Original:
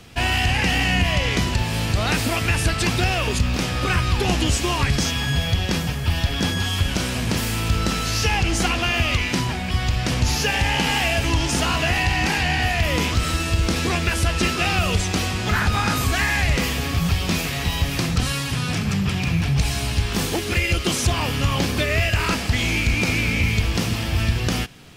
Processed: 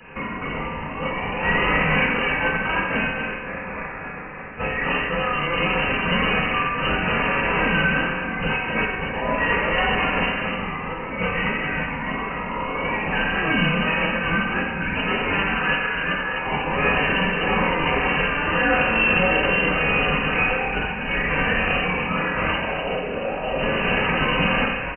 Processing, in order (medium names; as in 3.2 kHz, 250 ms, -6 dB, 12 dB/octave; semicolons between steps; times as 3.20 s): 3.10–4.53 s: spectral peaks clipped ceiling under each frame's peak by 24 dB; high-pass 1.3 kHz 6 dB/octave; compressor with a negative ratio -30 dBFS, ratio -0.5; delay 251 ms -6 dB; vibrato 1.7 Hz 70 cents; reverberation RT60 1.1 s, pre-delay 3 ms, DRR -8.5 dB; frequency inversion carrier 2.9 kHz; trim +1 dB